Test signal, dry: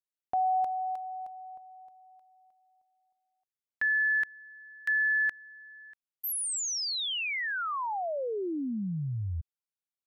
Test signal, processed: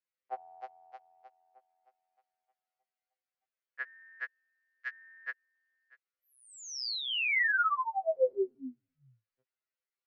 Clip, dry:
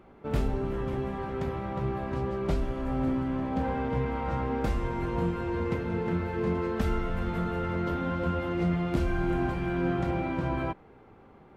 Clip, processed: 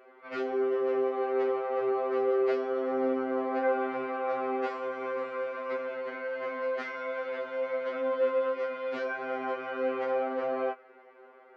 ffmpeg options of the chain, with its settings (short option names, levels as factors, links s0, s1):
-af "highpass=f=390:w=0.5412,highpass=f=390:w=1.3066,equalizer=f=480:t=q:w=4:g=5,equalizer=f=870:t=q:w=4:g=-6,equalizer=f=1400:t=q:w=4:g=4,equalizer=f=2000:t=q:w=4:g=4,equalizer=f=3600:t=q:w=4:g=-7,lowpass=f=4500:w=0.5412,lowpass=f=4500:w=1.3066,afftfilt=real='re*2.45*eq(mod(b,6),0)':imag='im*2.45*eq(mod(b,6),0)':win_size=2048:overlap=0.75,volume=1.58"